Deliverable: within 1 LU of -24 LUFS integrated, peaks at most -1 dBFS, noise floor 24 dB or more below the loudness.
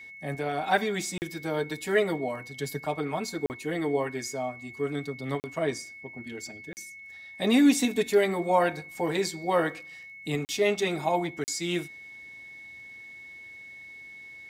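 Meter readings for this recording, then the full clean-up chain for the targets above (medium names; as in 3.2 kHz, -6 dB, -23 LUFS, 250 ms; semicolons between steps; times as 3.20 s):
dropouts 6; longest dropout 39 ms; steady tone 2.2 kHz; tone level -43 dBFS; loudness -28.5 LUFS; peak level -10.0 dBFS; loudness target -24.0 LUFS
-> interpolate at 1.18/3.46/5.40/6.73/10.45/11.44 s, 39 ms; band-stop 2.2 kHz, Q 30; trim +4.5 dB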